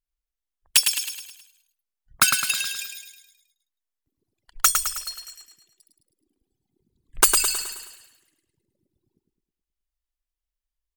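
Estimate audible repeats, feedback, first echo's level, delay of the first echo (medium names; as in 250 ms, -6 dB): 5, 49%, -5.5 dB, 106 ms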